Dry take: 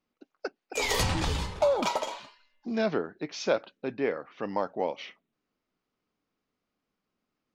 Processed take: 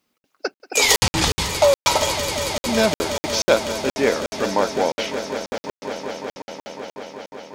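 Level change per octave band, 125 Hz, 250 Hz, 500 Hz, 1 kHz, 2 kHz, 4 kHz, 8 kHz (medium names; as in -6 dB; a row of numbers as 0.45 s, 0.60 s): +6.5 dB, +8.5 dB, +9.5 dB, +9.5 dB, +12.0 dB, +14.5 dB, +16.5 dB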